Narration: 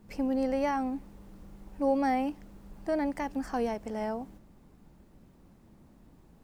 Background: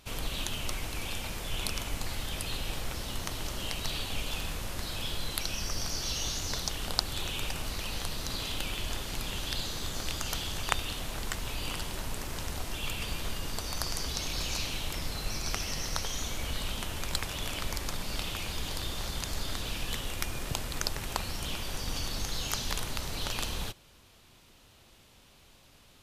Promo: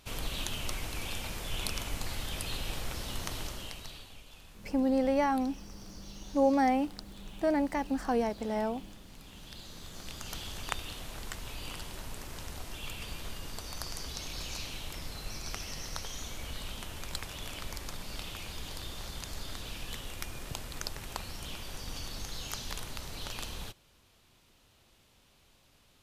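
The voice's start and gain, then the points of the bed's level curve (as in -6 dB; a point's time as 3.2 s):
4.55 s, +1.5 dB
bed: 3.39 s -1.5 dB
4.23 s -18.5 dB
9.06 s -18.5 dB
10.45 s -6 dB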